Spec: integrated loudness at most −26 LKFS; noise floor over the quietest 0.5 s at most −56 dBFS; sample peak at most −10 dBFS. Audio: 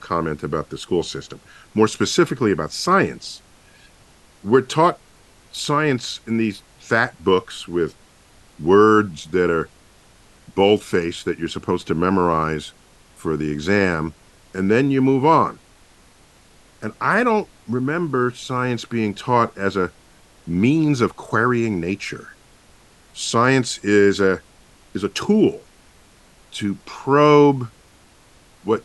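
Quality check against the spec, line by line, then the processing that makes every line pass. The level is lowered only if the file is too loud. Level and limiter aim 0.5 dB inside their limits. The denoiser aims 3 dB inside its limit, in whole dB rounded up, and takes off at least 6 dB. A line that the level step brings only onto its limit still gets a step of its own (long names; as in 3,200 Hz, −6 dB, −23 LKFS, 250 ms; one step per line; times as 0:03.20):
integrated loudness −19.5 LKFS: out of spec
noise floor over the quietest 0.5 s −51 dBFS: out of spec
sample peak −3.0 dBFS: out of spec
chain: level −7 dB
brickwall limiter −10.5 dBFS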